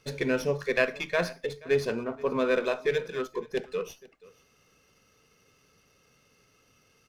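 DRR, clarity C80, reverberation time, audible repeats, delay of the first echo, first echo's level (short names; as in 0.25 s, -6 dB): none, none, none, 1, 0.48 s, -22.0 dB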